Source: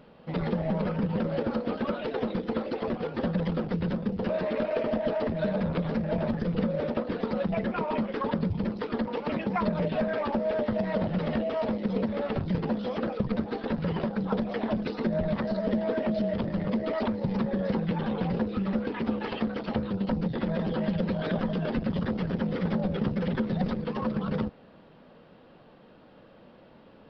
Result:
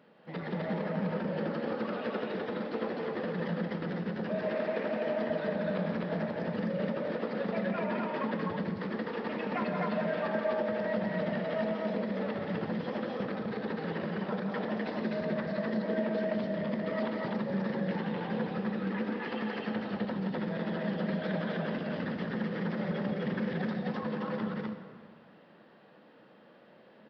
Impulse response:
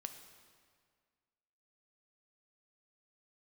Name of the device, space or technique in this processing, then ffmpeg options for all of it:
stadium PA: -filter_complex "[0:a]highpass=180,equalizer=f=1.8k:t=o:w=0.4:g=7,aecho=1:1:174.9|253.6:0.501|0.891[a];[1:a]atrim=start_sample=2205[b];[a][b]afir=irnorm=-1:irlink=0,volume=-3dB"

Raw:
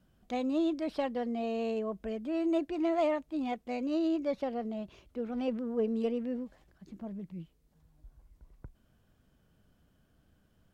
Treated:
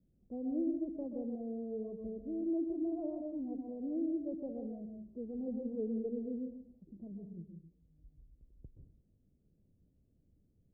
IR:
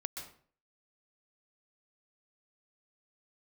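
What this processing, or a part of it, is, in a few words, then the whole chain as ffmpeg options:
next room: -filter_complex "[0:a]lowpass=f=470:w=0.5412,lowpass=f=470:w=1.3066[a];[1:a]atrim=start_sample=2205[b];[a][b]afir=irnorm=-1:irlink=0,volume=-3dB"

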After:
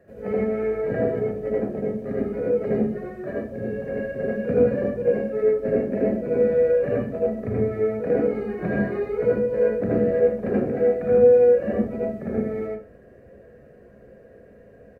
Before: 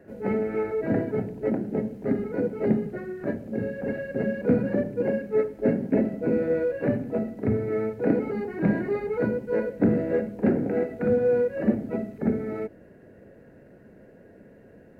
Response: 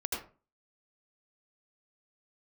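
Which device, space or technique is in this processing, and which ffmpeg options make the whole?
microphone above a desk: -filter_complex "[0:a]aecho=1:1:1.7:0.51[a];[1:a]atrim=start_sample=2205[b];[a][b]afir=irnorm=-1:irlink=0,volume=-3.5dB"

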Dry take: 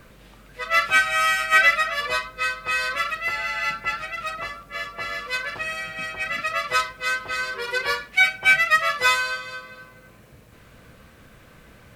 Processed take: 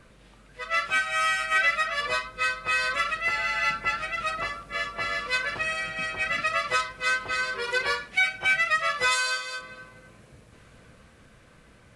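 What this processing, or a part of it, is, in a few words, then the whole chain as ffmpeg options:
low-bitrate web radio: -filter_complex "[0:a]asplit=3[a][b][c];[a]afade=t=out:st=9.11:d=0.02[d];[b]bass=f=250:g=-14,treble=f=4k:g=10,afade=t=in:st=9.11:d=0.02,afade=t=out:st=9.58:d=0.02[e];[c]afade=t=in:st=9.58:d=0.02[f];[d][e][f]amix=inputs=3:normalize=0,dynaudnorm=f=270:g=13:m=6.5dB,alimiter=limit=-9dB:level=0:latency=1:release=186,volume=-5dB" -ar 24000 -c:a aac -b:a 48k

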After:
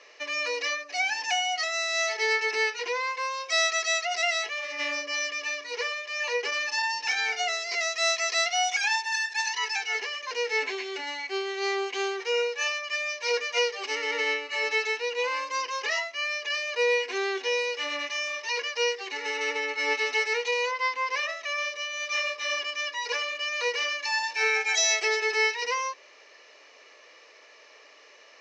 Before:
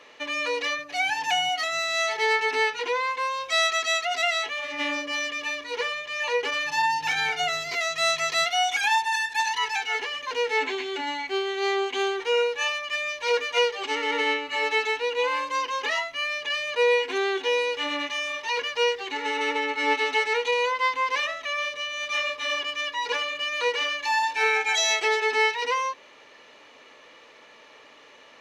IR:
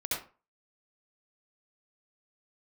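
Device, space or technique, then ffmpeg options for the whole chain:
phone speaker on a table: -filter_complex "[0:a]asettb=1/sr,asplit=3[a][b][c];[a]atrim=end=20.714[d];[b]atrim=start=20.71:end=21.29,asetpts=PTS-STARTPTS,afade=t=in:d=0.004:c=qsin,afade=t=out:st=0.576:d=0.004:c=qsin,highshelf=f=5.4k:g=-7[e];[c]atrim=start=21.286[f];[d][e]acrossfade=d=0.004:c1=hsin:c2=qsin[g];[g][f]acrossfade=d=0.004:c1=qsin:c2=hsin,highpass=f=390:w=0.5412,highpass=f=390:w=1.3066,equalizer=f=500:t=q:w=4:g=-3,equalizer=f=890:t=q:w=4:g=-8,equalizer=f=1.4k:t=q:w=4:g=-5,equalizer=f=3.4k:t=q:w=4:g=-8,equalizer=f=5.3k:t=q:w=4:g=9,lowpass=f=7.2k:w=0.5412,lowpass=f=7.2k:w=1.3066"

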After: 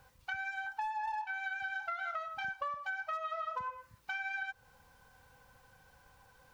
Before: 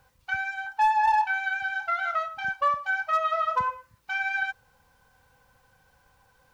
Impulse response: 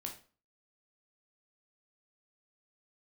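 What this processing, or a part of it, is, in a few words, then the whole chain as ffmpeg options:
serial compression, peaks first: -af "acompressor=threshold=-31dB:ratio=6,acompressor=threshold=-43dB:ratio=1.5"

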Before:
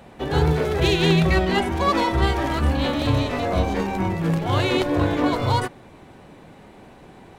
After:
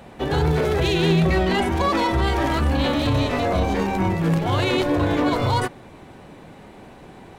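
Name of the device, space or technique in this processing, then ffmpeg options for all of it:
clipper into limiter: -filter_complex "[0:a]asettb=1/sr,asplit=3[a][b][c];[a]atrim=end=0.944[d];[b]atrim=start=0.94:end=1.39,asetpts=PTS-STARTPTS,afade=t=in:d=0.004:c=qsin,afade=t=out:st=0.446:d=0.004:c=qsin,equalizer=f=290:t=o:w=2.8:g=4[e];[c]atrim=start=1.386[f];[d][e]acrossfade=d=0.004:c1=hsin:c2=qsin[g];[g][f]acrossfade=d=0.004:c1=qsin:c2=hsin,asoftclip=type=hard:threshold=-9dB,alimiter=limit=-14.5dB:level=0:latency=1:release=12,volume=2.5dB"

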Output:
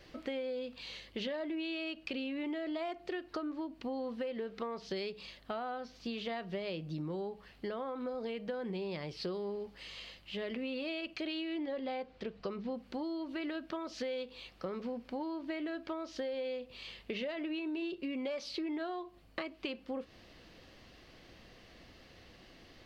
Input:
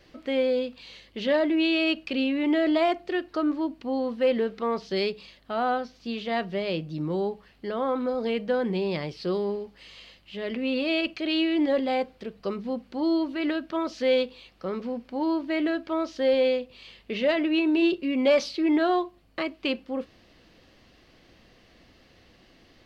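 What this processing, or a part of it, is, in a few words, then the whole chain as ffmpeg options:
serial compression, leveller first: -filter_complex "[0:a]equalizer=f=250:w=1.5:g=-2,acompressor=threshold=-27dB:ratio=2.5,acompressor=threshold=-36dB:ratio=6,asettb=1/sr,asplit=3[a][b][c];[a]atrim=end=11.574[d];[b]atrim=start=11.57:end=12.74,asetpts=PTS-STARTPTS,afade=t=in:d=0.004:c=qsin,afade=t=out:st=1.166:d=0.004:c=qsin,lowpass=5.5k[e];[c]atrim=start=12.736[f];[d][e]acrossfade=d=0.004:c1=hsin:c2=qsin[g];[g][f]acrossfade=d=0.004:c1=qsin:c2=hsin"

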